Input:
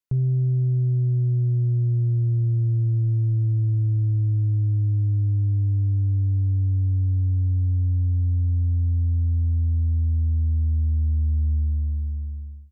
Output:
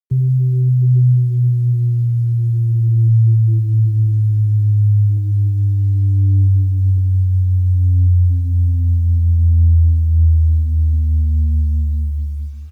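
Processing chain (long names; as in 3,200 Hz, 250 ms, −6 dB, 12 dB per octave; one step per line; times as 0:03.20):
high-pass filter 50 Hz 24 dB per octave
slap from a distant wall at 230 metres, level −27 dB
dynamic equaliser 200 Hz, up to +4 dB, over −35 dBFS, Q 1.3
on a send at −10.5 dB: convolution reverb RT60 3.5 s, pre-delay 44 ms
on the sum: gate on every frequency bin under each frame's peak −25 dB strong
in parallel at −2.5 dB: downward compressor 4 to 1, threshold −35 dBFS, peak gain reduction 16.5 dB
0:05.17–0:06.98: on the sum: drawn EQ curve 150 Hz 0 dB, 270 Hz −2 dB, 480 Hz +11 dB
bit reduction 10 bits
flanger whose copies keep moving one way rising 0.33 Hz
level +8 dB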